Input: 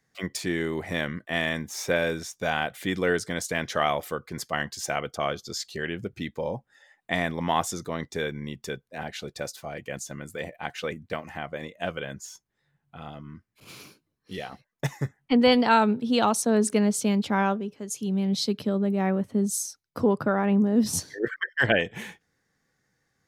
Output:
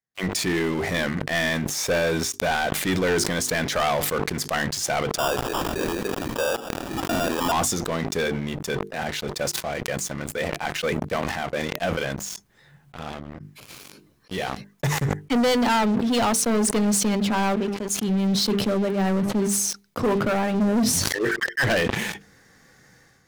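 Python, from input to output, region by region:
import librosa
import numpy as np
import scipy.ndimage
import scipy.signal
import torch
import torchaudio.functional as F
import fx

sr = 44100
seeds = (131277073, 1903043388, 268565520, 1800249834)

y = fx.chain(x, sr, fx.highpass(hz=320.0, slope=24),
    fx.sample_hold(seeds[0], rate_hz=2100.0, jitter_pct=0),
    fx.pre_swell(db_per_s=59.0), at=(5.18, 7.52))
y = fx.hum_notches(y, sr, base_hz=50, count=9)
y = fx.leveller(y, sr, passes=5)
y = fx.sustainer(y, sr, db_per_s=28.0)
y = y * 10.0 ** (-11.0 / 20.0)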